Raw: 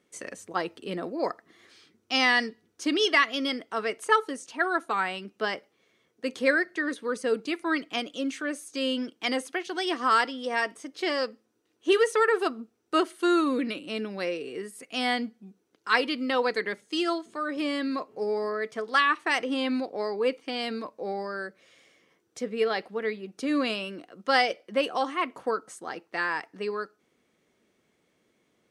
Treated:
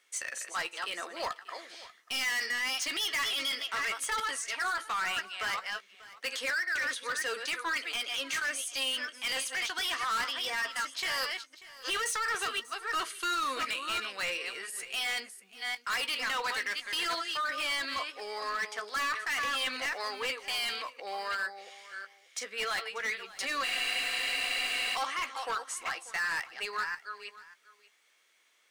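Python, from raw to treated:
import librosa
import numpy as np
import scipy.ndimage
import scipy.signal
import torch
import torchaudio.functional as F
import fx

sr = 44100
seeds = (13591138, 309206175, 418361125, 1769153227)

p1 = fx.reverse_delay(x, sr, ms=350, wet_db=-10.0)
p2 = scipy.signal.sosfilt(scipy.signal.butter(2, 1400.0, 'highpass', fs=sr, output='sos'), p1)
p3 = fx.over_compress(p2, sr, threshold_db=-35.0, ratio=-0.5)
p4 = p2 + F.gain(torch.from_numpy(p3), 0.0).numpy()
p5 = np.clip(p4, -10.0 ** (-28.0 / 20.0), 10.0 ** (-28.0 / 20.0))
p6 = fx.doubler(p5, sr, ms=15.0, db=-11.5)
p7 = p6 + 10.0 ** (-18.5 / 20.0) * np.pad(p6, (int(589 * sr / 1000.0), 0))[:len(p6)]
p8 = fx.spec_freeze(p7, sr, seeds[0], at_s=23.65, hold_s=1.3)
y = F.gain(torch.from_numpy(p8), -1.0).numpy()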